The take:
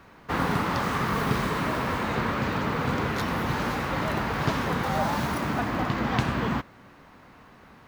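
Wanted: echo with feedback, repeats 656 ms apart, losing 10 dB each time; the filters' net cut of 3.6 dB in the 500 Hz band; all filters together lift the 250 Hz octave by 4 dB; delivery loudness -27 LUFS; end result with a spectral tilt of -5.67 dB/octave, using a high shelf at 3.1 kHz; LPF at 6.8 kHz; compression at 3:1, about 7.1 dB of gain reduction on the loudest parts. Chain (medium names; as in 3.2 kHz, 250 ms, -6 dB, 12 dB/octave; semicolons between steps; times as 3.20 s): low-pass 6.8 kHz; peaking EQ 250 Hz +6.5 dB; peaking EQ 500 Hz -6.5 dB; treble shelf 3.1 kHz -5.5 dB; compression 3:1, threshold -28 dBFS; feedback delay 656 ms, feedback 32%, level -10 dB; trim +4 dB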